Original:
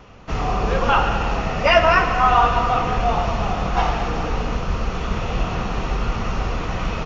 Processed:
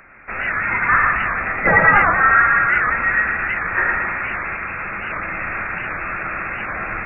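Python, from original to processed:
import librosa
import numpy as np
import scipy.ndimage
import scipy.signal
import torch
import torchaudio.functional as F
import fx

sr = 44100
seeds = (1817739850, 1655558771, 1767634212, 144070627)

p1 = fx.highpass(x, sr, hz=950.0, slope=6)
p2 = 10.0 ** (-17.5 / 20.0) * (np.abs((p1 / 10.0 ** (-17.5 / 20.0) + 3.0) % 4.0 - 2.0) - 1.0)
p3 = p1 + (p2 * 10.0 ** (-10.5 / 20.0))
p4 = p3 + 10.0 ** (-4.5 / 20.0) * np.pad(p3, (int(114 * sr / 1000.0), 0))[:len(p3)]
p5 = fx.freq_invert(p4, sr, carrier_hz=2600)
p6 = fx.record_warp(p5, sr, rpm=78.0, depth_cents=160.0)
y = p6 * 10.0 ** (3.5 / 20.0)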